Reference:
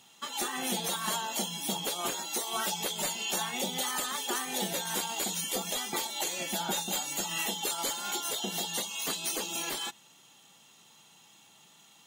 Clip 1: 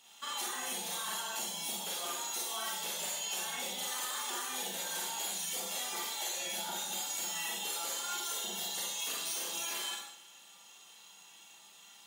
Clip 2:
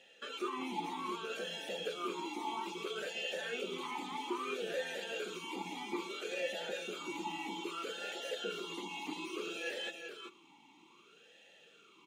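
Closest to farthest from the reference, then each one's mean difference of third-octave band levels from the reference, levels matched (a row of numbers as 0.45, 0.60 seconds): 1, 2; 5.5, 9.0 decibels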